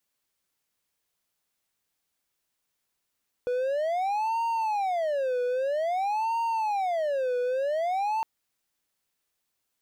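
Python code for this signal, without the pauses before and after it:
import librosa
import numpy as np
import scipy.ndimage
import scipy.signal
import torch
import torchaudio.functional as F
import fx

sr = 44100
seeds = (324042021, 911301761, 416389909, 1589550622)

y = fx.siren(sr, length_s=4.76, kind='wail', low_hz=492.0, high_hz=923.0, per_s=0.51, wave='triangle', level_db=-22.5)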